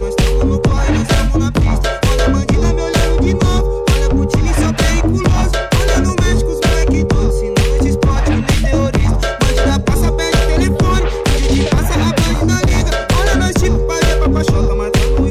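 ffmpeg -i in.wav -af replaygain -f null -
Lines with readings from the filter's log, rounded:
track_gain = -2.2 dB
track_peak = 0.367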